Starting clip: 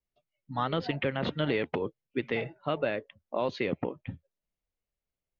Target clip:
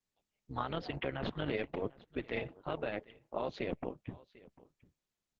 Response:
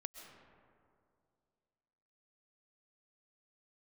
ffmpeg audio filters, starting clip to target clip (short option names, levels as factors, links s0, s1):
-filter_complex "[0:a]asplit=3[s0][s1][s2];[s0]afade=t=out:st=3.36:d=0.02[s3];[s1]bandreject=f=1200:w=17,afade=t=in:st=3.36:d=0.02,afade=t=out:st=3.96:d=0.02[s4];[s2]afade=t=in:st=3.96:d=0.02[s5];[s3][s4][s5]amix=inputs=3:normalize=0,alimiter=limit=0.0944:level=0:latency=1:release=52,tremolo=f=200:d=0.788,asplit=2[s6][s7];[s7]aecho=0:1:747:0.0891[s8];[s6][s8]amix=inputs=2:normalize=0,volume=0.891" -ar 48000 -c:a libopus -b:a 10k